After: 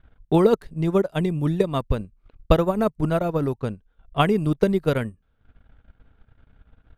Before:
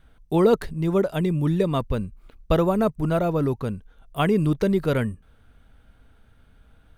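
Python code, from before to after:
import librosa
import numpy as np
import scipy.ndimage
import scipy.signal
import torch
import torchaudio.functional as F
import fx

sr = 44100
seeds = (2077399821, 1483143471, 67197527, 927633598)

y = fx.env_lowpass(x, sr, base_hz=2700.0, full_db=-19.0)
y = fx.transient(y, sr, attack_db=7, sustain_db=-11)
y = y * 10.0 ** (-1.5 / 20.0)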